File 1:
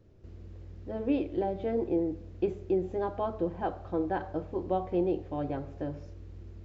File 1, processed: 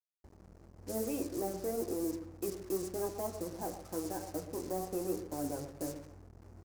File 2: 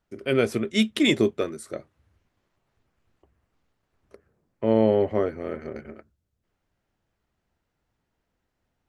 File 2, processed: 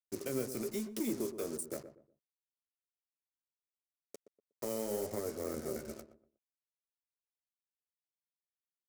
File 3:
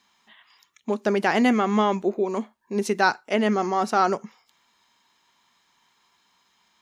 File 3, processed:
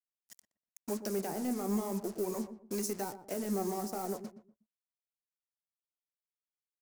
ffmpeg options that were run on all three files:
-filter_complex "[0:a]afftdn=nr=20:nf=-47,highshelf=f=2.6k:g=2,acrossover=split=150|1800[a][b][c];[a]acompressor=threshold=-51dB:ratio=4[d];[b]acompressor=threshold=-27dB:ratio=4[e];[c]acompressor=threshold=-42dB:ratio=4[f];[d][e][f]amix=inputs=3:normalize=0,acrossover=split=740[g][h];[g]alimiter=level_in=2.5dB:limit=-24dB:level=0:latency=1:release=53,volume=-2.5dB[i];[h]acompressor=threshold=-45dB:ratio=20[j];[i][j]amix=inputs=2:normalize=0,asoftclip=type=tanh:threshold=-27dB,flanger=delay=8.9:depth=7.4:regen=46:speed=0.94:shape=sinusoidal,acrusher=bits=8:mix=0:aa=0.5,aeval=exprs='sgn(val(0))*max(abs(val(0))-0.00168,0)':c=same,aexciter=amount=6.8:drive=3.8:freq=4.8k,asplit=2[k][l];[l]adelay=121,lowpass=f=860:p=1,volume=-10dB,asplit=2[m][n];[n]adelay=121,lowpass=f=860:p=1,volume=0.31,asplit=2[o][p];[p]adelay=121,lowpass=f=860:p=1,volume=0.31[q];[k][m][o][q]amix=inputs=4:normalize=0,adynamicequalizer=threshold=0.00158:dfrequency=1700:dqfactor=0.7:tfrequency=1700:tqfactor=0.7:attack=5:release=100:ratio=0.375:range=2:mode=cutabove:tftype=highshelf,volume=3.5dB"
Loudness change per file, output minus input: -6.0, -15.0, -13.0 LU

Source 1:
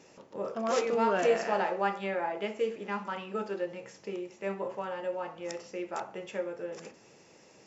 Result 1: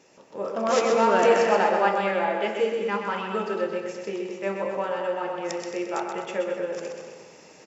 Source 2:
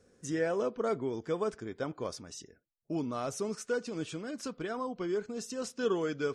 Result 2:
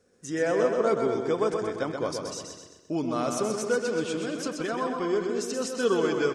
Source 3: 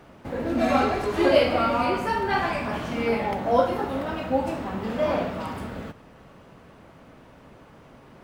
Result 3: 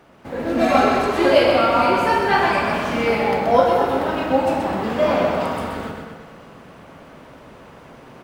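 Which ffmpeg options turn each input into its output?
-filter_complex "[0:a]lowshelf=f=170:g=-7,asplit=2[a][b];[b]adelay=219,lowpass=f=3.4k:p=1,volume=-7.5dB,asplit=2[c][d];[d]adelay=219,lowpass=f=3.4k:p=1,volume=0.23,asplit=2[e][f];[f]adelay=219,lowpass=f=3.4k:p=1,volume=0.23[g];[c][e][g]amix=inputs=3:normalize=0[h];[a][h]amix=inputs=2:normalize=0,dynaudnorm=f=100:g=7:m=6.5dB,asplit=2[i][j];[j]aecho=0:1:128|256|384|512|640:0.531|0.218|0.0892|0.0366|0.015[k];[i][k]amix=inputs=2:normalize=0"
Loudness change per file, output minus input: +7.5, +7.0, +6.5 LU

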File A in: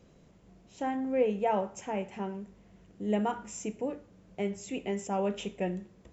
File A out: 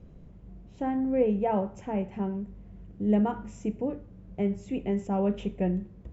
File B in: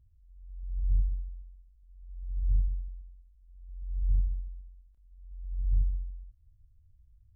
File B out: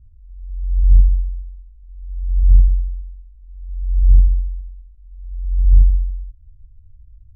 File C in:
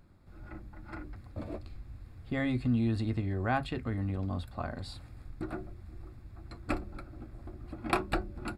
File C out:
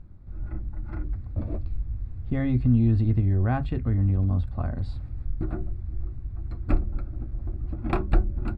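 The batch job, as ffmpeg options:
-af "aemphasis=mode=reproduction:type=riaa,volume=-1dB"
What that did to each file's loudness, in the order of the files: +3.5, +16.5, +7.0 LU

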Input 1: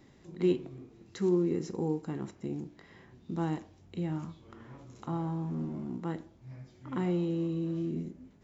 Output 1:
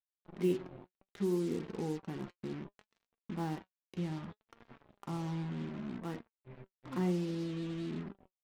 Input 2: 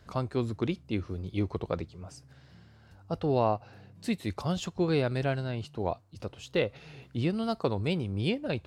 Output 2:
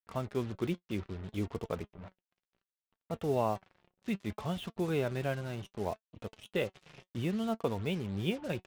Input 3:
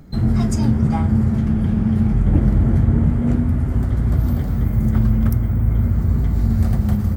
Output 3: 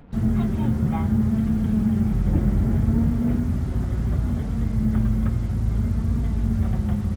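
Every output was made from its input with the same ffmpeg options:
-af "aresample=8000,aresample=44100,acrusher=bits=6:mix=0:aa=0.5,flanger=delay=4.2:depth=1.5:regen=65:speed=0.65:shape=triangular"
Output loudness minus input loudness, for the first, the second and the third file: -4.5, -4.5, -5.0 LU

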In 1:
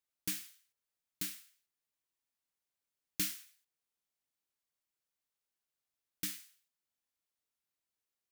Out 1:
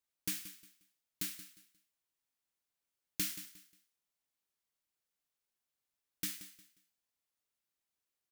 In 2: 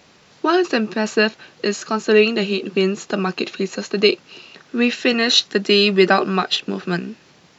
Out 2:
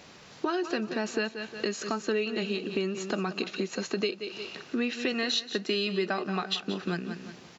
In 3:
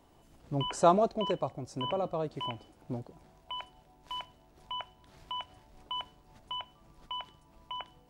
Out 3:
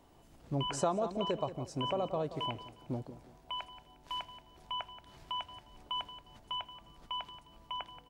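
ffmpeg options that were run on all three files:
-filter_complex "[0:a]asplit=2[a][b];[b]aecho=0:1:178|356|534:0.2|0.0539|0.0145[c];[a][c]amix=inputs=2:normalize=0,acompressor=threshold=-29dB:ratio=4"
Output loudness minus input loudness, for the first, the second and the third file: -0.5, -12.5, -3.5 LU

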